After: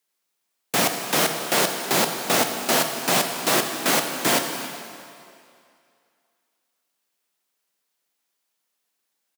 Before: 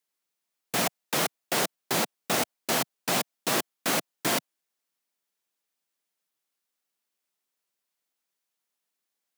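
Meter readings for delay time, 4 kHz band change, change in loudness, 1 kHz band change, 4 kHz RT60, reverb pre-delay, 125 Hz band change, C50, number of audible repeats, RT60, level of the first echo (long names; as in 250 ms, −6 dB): 278 ms, +7.0 dB, +6.5 dB, +7.0 dB, 2.2 s, 13 ms, +4.5 dB, 5.5 dB, 1, 2.4 s, −16.5 dB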